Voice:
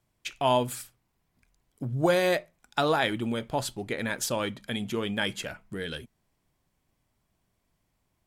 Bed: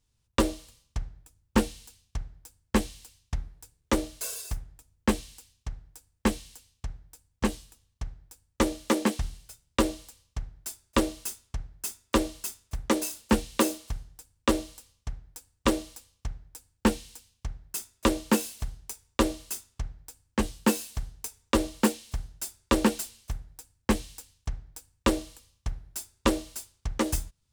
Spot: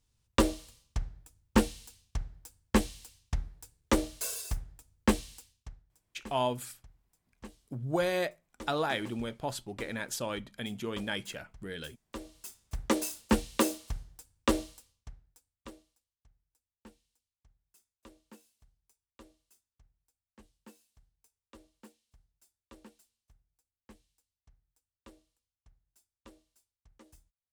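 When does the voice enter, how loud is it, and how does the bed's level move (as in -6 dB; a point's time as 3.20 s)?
5.90 s, -6.0 dB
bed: 5.38 s -1 dB
6.02 s -21 dB
12.07 s -21 dB
12.76 s -3 dB
14.63 s -3 dB
16.04 s -31.5 dB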